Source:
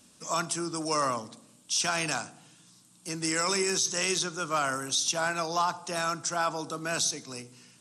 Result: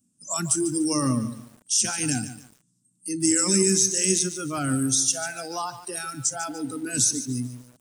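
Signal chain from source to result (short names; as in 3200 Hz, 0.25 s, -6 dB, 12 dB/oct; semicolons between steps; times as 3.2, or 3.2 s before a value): spectral noise reduction 24 dB; graphic EQ 125/250/500/1000/2000/4000/8000 Hz +11/+11/-8/-8/-7/-10/+8 dB; lo-fi delay 0.146 s, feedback 35%, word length 8-bit, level -12 dB; gain +6 dB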